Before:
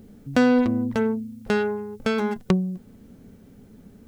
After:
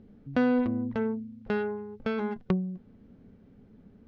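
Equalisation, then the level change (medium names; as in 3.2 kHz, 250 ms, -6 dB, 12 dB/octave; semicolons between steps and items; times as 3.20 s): distance through air 250 m; -6.0 dB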